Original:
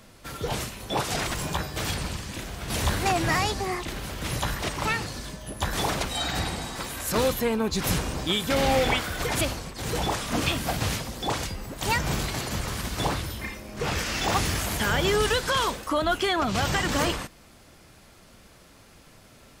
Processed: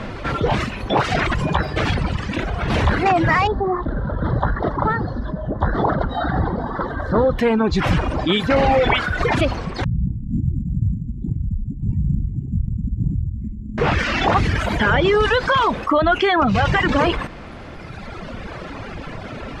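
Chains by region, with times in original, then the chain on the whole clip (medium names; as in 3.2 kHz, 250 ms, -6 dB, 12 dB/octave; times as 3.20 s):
3.47–7.39 s: Butterworth band-stop 2.5 kHz, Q 1.2 + distance through air 400 m
9.84–13.78 s: inverse Chebyshev low-pass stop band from 520 Hz, stop band 50 dB + careless resampling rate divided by 6×, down filtered, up hold
whole clip: low-pass 2.3 kHz 12 dB/octave; reverb removal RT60 1.7 s; level flattener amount 50%; trim +8 dB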